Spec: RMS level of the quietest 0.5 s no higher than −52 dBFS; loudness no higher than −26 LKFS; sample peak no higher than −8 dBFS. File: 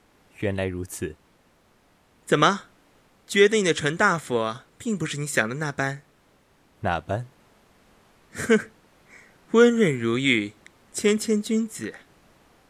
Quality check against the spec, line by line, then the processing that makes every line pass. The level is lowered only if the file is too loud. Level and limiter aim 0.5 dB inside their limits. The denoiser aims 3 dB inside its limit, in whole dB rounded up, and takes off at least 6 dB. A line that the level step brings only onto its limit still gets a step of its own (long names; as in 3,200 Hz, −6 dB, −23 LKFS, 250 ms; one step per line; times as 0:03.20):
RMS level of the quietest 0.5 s −61 dBFS: in spec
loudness −23.5 LKFS: out of spec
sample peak −5.5 dBFS: out of spec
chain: level −3 dB